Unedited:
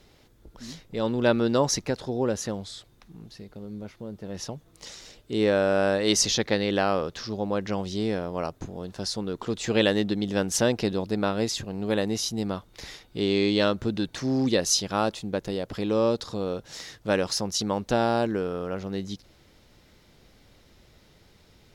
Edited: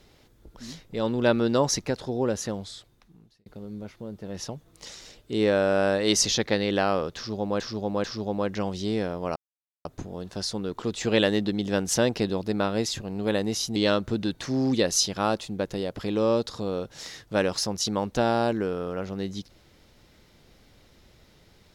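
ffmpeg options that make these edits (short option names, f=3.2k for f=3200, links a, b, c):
-filter_complex "[0:a]asplit=6[a][b][c][d][e][f];[a]atrim=end=3.46,asetpts=PTS-STARTPTS,afade=t=out:st=2.64:d=0.82[g];[b]atrim=start=3.46:end=7.602,asetpts=PTS-STARTPTS,afade=t=in:d=0.004:c=hsin[h];[c]atrim=start=7.158:end=7.602[i];[d]atrim=start=7.158:end=8.48,asetpts=PTS-STARTPTS,afade=t=out:st=1.318:d=0.004:c=hsin,apad=pad_dur=0.49[j];[e]atrim=start=8.48:end=12.392,asetpts=PTS-STARTPTS,afade=t=in:d=0.004:c=hsin[k];[f]atrim=start=13.498[l];[g][h]concat=n=2:v=0:a=1[m];[m][i]acrossfade=d=0.004:c1=hsin:c2=hsin[n];[j][k]concat=n=2:v=0:a=1[o];[n][o]acrossfade=d=0.004:c1=hsin:c2=hsin[p];[p][l]acrossfade=d=0.004:c1=hsin:c2=hsin"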